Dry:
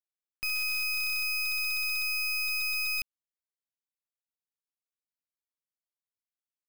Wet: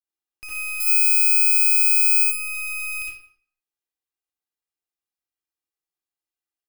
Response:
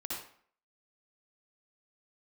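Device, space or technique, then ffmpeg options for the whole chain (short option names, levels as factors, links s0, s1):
microphone above a desk: -filter_complex "[0:a]asettb=1/sr,asplit=3[s0][s1][s2];[s0]atrim=end=0.804[s3];[s1]atrim=start=0.8:end=2.24,asetpts=PTS-STARTPTS,afade=t=in:d=0.004:c=qsin,afade=t=out:st=1.436:d=0.004:c=qsin,aemphasis=mode=production:type=75fm[s4];[s2]atrim=start=2.236[s5];[s3][s4]acrossfade=d=0.004:c1=hsin:c2=qsin[s6];[s6][s5]acrossfade=d=0.004:c1=qsin:c2=hsin,aecho=1:1:2.5:0.55[s7];[1:a]atrim=start_sample=2205[s8];[s7][s8]afir=irnorm=-1:irlink=0,asplit=2[s9][s10];[s10]adelay=180.8,volume=0.0562,highshelf=f=4000:g=-4.07[s11];[s9][s11]amix=inputs=2:normalize=0"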